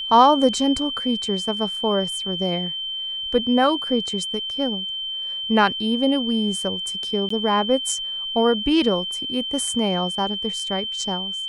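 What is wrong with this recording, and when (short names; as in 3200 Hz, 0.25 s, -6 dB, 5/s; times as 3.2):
tone 3100 Hz -26 dBFS
7.29–7.3 gap 14 ms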